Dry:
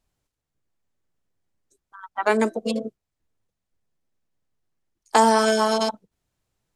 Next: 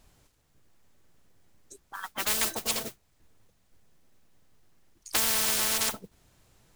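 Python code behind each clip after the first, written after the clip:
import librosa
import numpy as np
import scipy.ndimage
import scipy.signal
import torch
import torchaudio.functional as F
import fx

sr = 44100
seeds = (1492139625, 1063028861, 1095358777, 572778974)

y = fx.mod_noise(x, sr, seeds[0], snr_db=24)
y = fx.spectral_comp(y, sr, ratio=10.0)
y = F.gain(torch.from_numpy(y), -5.5).numpy()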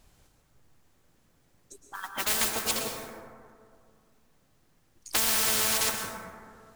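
y = fx.rev_plate(x, sr, seeds[1], rt60_s=2.2, hf_ratio=0.3, predelay_ms=100, drr_db=3.0)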